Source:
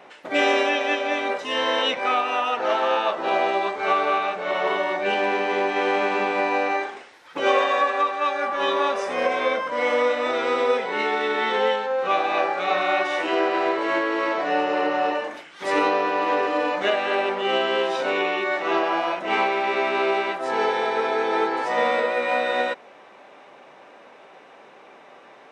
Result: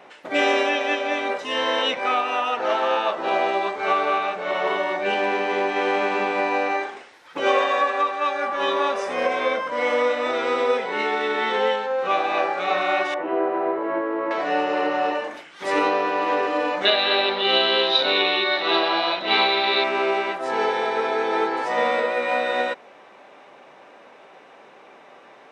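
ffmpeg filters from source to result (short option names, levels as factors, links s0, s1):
-filter_complex "[0:a]asettb=1/sr,asplit=3[s0][s1][s2];[s0]atrim=end=13.144[s3];[s1]atrim=start=13.14:end=14.31,asetpts=PTS-STARTPTS,afade=t=in:d=0.004:c=qsin,afade=t=out:st=1.166:d=0.004:c=qsin,lowpass=1100[s4];[s2]atrim=start=14.306[s5];[s3][s4]acrossfade=d=0.004:c1=hsin:c2=qsin[s6];[s6][s5]acrossfade=d=0.004:c1=qsin:c2=hsin,asettb=1/sr,asplit=3[s7][s8][s9];[s7]atrim=end=16.854[s10];[s8]atrim=start=16.85:end=19.84,asetpts=PTS-STARTPTS,afade=t=in:d=0.004:c=qsin,afade=t=out:st=2.986:d=0.004:c=qsin,lowpass=f=3900:t=q:w=14[s11];[s9]atrim=start=19.836[s12];[s10][s11]acrossfade=d=0.004:c1=hsin:c2=qsin[s13];[s13][s12]acrossfade=d=0.004:c1=qsin:c2=hsin"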